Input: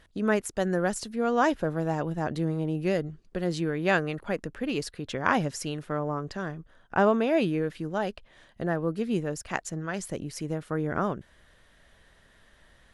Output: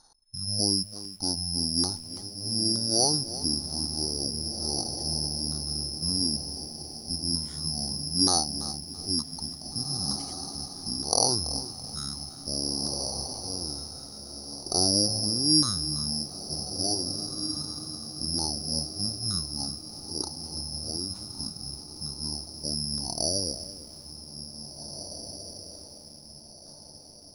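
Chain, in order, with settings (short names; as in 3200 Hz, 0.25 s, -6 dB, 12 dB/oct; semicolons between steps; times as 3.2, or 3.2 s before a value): LFO low-pass saw down 2.3 Hz 630–2600 Hz; diffused feedback echo 0.925 s, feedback 41%, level -9 dB; careless resampling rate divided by 4×, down filtered, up zero stuff; wide varispeed 0.473×; lo-fi delay 0.333 s, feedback 35%, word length 6-bit, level -14.5 dB; gain -10 dB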